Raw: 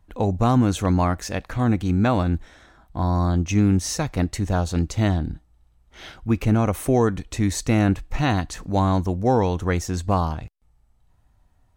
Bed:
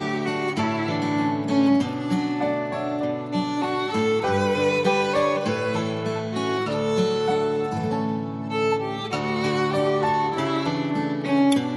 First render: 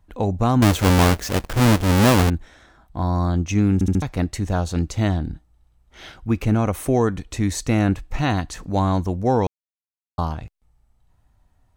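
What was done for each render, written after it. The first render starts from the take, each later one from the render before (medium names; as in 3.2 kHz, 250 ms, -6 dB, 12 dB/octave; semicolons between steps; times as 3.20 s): 0.62–2.30 s: square wave that keeps the level; 3.74 s: stutter in place 0.07 s, 4 plays; 9.47–10.18 s: mute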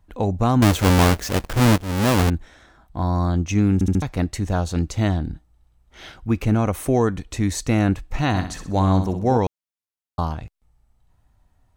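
1.78–2.30 s: fade in linear, from -14 dB; 8.28–9.38 s: flutter echo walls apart 10.8 m, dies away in 0.43 s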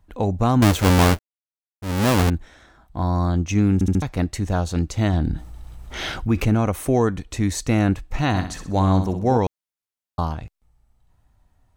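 1.19–1.82 s: mute; 5.13–6.49 s: level flattener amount 50%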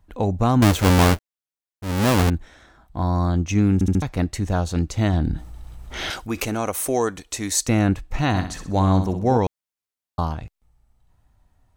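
6.10–7.69 s: tone controls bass -13 dB, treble +9 dB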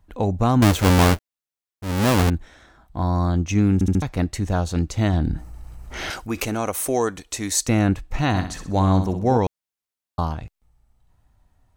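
5.33–6.32 s: peaking EQ 3.5 kHz -12.5 dB -> -5 dB 0.35 oct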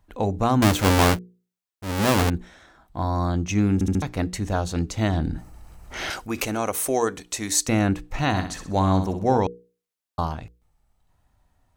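bass shelf 160 Hz -5 dB; hum notches 60/120/180/240/300/360/420/480 Hz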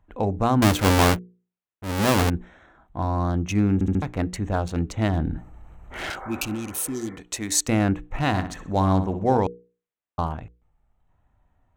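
local Wiener filter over 9 samples; 6.23–7.13 s: spectral replace 380–2300 Hz both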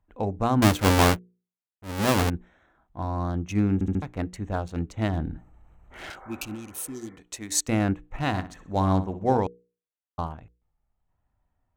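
upward expansion 1.5:1, over -33 dBFS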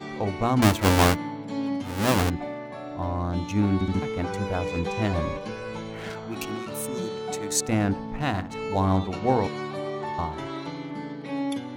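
add bed -10 dB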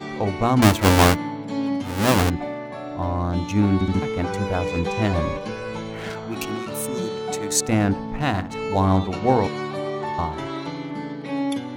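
trim +4 dB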